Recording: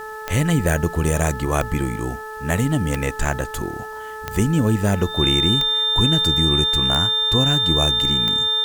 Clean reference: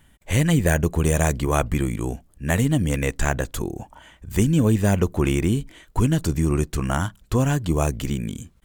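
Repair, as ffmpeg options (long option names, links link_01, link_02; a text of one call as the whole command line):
ffmpeg -i in.wav -af "adeclick=threshold=4,bandreject=frequency=433.9:width_type=h:width=4,bandreject=frequency=867.8:width_type=h:width=4,bandreject=frequency=1301.7:width_type=h:width=4,bandreject=frequency=1735.6:width_type=h:width=4,bandreject=frequency=3600:width=30,agate=range=-21dB:threshold=-25dB" out.wav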